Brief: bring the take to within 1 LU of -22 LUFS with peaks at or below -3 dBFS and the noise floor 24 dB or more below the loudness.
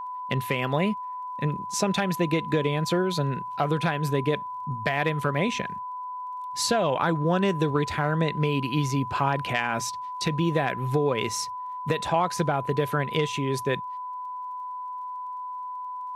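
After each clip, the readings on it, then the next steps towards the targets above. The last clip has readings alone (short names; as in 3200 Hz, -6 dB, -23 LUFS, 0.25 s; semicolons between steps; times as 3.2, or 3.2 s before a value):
ticks 31/s; steady tone 1000 Hz; tone level -32 dBFS; loudness -27.0 LUFS; peak -11.0 dBFS; loudness target -22.0 LUFS
-> de-click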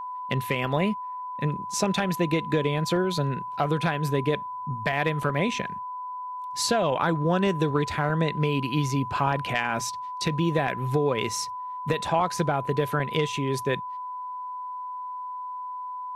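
ticks 0.062/s; steady tone 1000 Hz; tone level -32 dBFS
-> notch 1000 Hz, Q 30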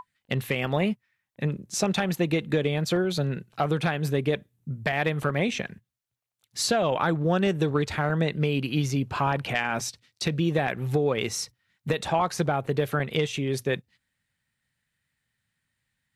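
steady tone none; loudness -27.0 LUFS; peak -12.0 dBFS; loudness target -22.0 LUFS
-> gain +5 dB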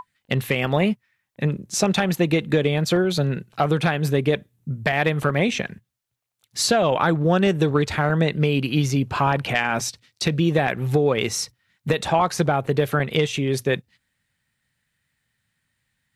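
loudness -22.0 LUFS; peak -7.0 dBFS; noise floor -76 dBFS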